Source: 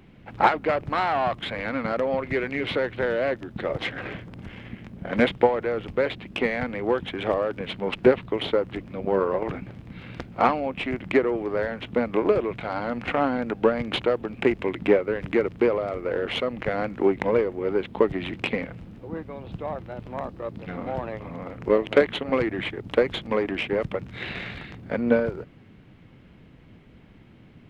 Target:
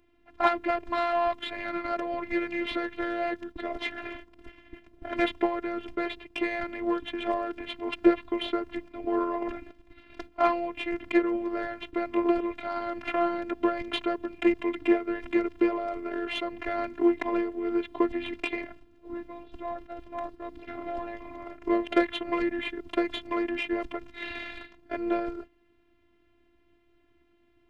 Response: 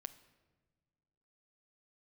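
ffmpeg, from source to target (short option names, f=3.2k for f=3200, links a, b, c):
-af "agate=range=-9dB:threshold=-38dB:ratio=16:detection=peak,afftfilt=real='hypot(re,im)*cos(PI*b)':imag='0':win_size=512:overlap=0.75"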